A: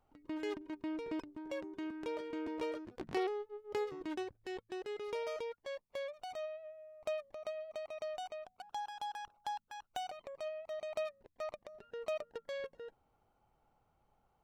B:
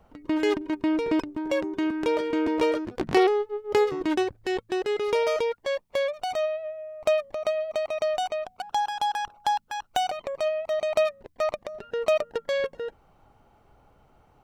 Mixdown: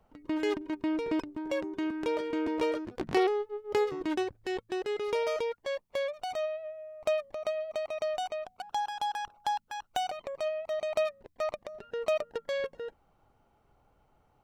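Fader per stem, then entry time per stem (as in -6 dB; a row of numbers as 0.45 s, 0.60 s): -1.5 dB, -9.0 dB; 0.00 s, 0.00 s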